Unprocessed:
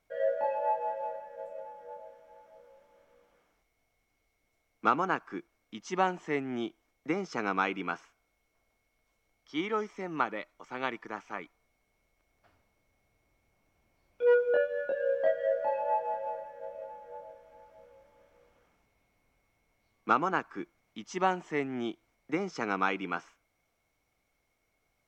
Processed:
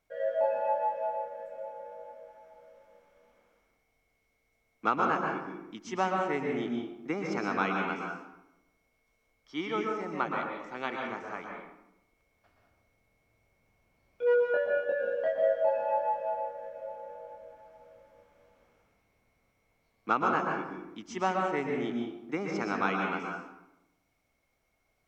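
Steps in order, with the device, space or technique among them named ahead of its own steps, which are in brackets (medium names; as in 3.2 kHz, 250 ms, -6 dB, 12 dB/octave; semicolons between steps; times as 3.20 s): bathroom (reverberation RT60 0.90 s, pre-delay 114 ms, DRR 0 dB); trim -2 dB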